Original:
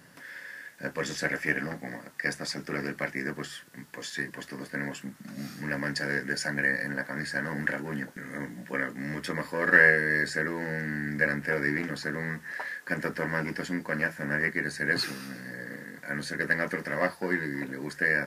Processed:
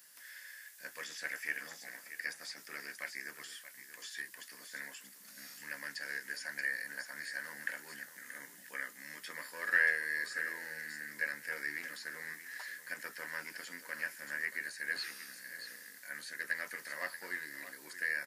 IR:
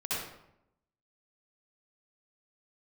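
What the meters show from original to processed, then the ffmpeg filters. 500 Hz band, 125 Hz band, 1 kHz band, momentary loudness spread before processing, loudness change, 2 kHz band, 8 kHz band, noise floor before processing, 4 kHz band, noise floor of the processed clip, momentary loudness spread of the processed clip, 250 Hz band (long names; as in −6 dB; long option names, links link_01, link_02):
−19.5 dB, below −25 dB, −13.0 dB, 13 LU, −10.0 dB, −9.0 dB, −4.0 dB, −51 dBFS, −7.5 dB, −56 dBFS, 11 LU, −25.5 dB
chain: -filter_complex "[0:a]aderivative,aecho=1:1:630:0.237,acrossover=split=3300[link_01][link_02];[link_02]acompressor=threshold=-51dB:ratio=4:attack=1:release=60[link_03];[link_01][link_03]amix=inputs=2:normalize=0,volume=3dB"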